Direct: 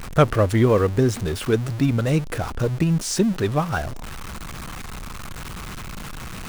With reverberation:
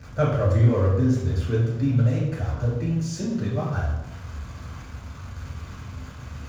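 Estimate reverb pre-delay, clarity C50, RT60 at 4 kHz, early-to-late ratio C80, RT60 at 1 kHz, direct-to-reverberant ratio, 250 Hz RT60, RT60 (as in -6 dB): 3 ms, 2.0 dB, 0.70 s, 4.5 dB, 0.85 s, -6.0 dB, 1.1 s, 0.90 s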